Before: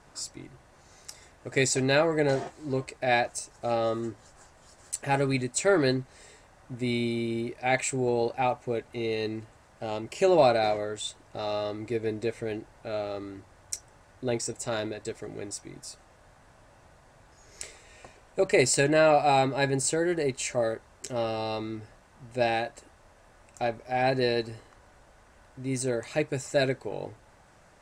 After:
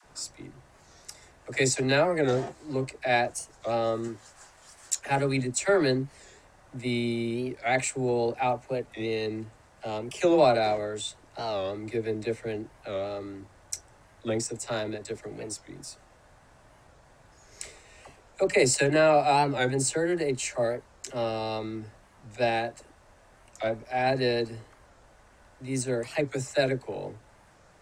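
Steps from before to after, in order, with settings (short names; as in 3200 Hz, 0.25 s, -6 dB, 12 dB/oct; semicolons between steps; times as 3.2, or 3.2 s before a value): 4.04–5 tilt shelf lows -5 dB, about 660 Hz; dispersion lows, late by 47 ms, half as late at 510 Hz; record warp 45 rpm, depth 160 cents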